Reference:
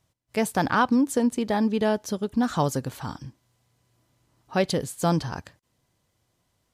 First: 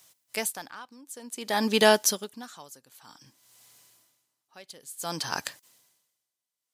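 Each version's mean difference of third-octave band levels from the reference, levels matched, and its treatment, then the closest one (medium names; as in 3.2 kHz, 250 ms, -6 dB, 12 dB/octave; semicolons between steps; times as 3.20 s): 11.0 dB: high-pass 130 Hz; tilt EQ +4 dB/octave; saturation -7.5 dBFS, distortion -25 dB; logarithmic tremolo 0.54 Hz, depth 31 dB; trim +8 dB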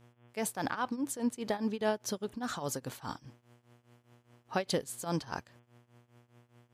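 4.5 dB: bass shelf 210 Hz -10.5 dB; compression, threshold -23 dBFS, peak gain reduction 6.5 dB; mains buzz 120 Hz, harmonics 29, -58 dBFS -6 dB/octave; tremolo triangle 4.9 Hz, depth 90%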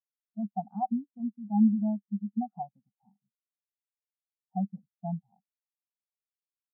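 20.0 dB: de-esser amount 80%; two resonant band-passes 390 Hz, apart 1.9 oct; spectral contrast expander 2.5:1; trim +2 dB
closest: second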